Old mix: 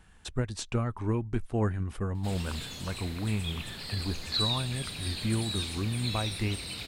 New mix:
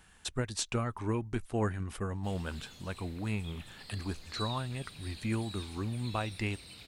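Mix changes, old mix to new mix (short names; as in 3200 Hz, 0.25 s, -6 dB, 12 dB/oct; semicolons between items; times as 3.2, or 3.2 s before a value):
speech: add tilt +1.5 dB/oct; background -12.0 dB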